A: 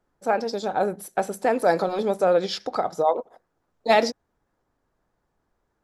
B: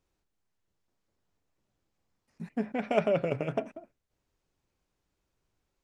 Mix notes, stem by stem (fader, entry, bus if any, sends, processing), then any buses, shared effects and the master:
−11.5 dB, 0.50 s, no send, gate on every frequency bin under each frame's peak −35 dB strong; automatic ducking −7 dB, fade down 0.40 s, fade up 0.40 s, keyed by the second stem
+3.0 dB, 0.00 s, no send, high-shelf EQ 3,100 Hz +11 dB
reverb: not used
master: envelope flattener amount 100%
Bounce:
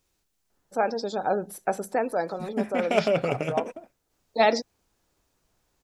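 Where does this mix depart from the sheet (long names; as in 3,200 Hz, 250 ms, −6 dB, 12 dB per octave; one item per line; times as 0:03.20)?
stem A −11.5 dB → −2.0 dB
master: missing envelope flattener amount 100%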